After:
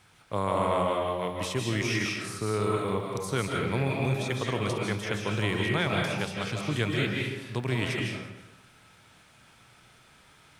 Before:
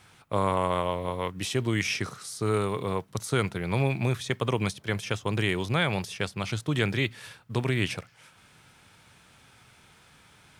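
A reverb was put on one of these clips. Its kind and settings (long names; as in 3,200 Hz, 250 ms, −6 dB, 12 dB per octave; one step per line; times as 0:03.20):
comb and all-pass reverb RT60 1 s, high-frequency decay 0.7×, pre-delay 115 ms, DRR −1 dB
level −3.5 dB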